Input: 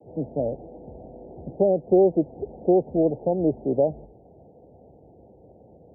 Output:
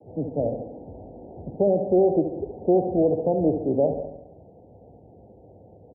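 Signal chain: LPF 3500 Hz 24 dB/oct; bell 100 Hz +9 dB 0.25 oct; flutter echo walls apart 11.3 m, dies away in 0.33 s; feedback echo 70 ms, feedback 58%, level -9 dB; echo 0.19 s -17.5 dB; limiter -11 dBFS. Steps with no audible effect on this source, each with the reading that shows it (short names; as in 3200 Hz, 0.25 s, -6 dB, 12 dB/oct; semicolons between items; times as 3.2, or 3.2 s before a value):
LPF 3500 Hz: input band ends at 910 Hz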